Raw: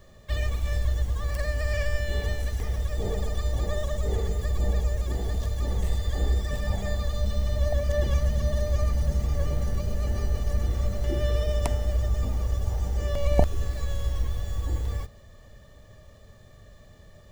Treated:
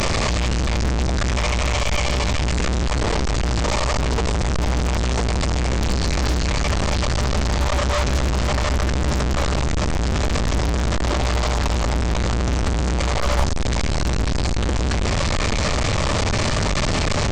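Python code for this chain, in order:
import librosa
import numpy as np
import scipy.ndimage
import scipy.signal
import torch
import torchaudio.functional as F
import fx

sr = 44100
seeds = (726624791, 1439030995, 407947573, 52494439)

y = fx.delta_mod(x, sr, bps=32000, step_db=-17.0)
y = np.clip(y, -10.0 ** (-16.5 / 20.0), 10.0 ** (-16.5 / 20.0))
y = fx.formant_shift(y, sr, semitones=4)
y = F.gain(torch.from_numpy(y), 3.5).numpy()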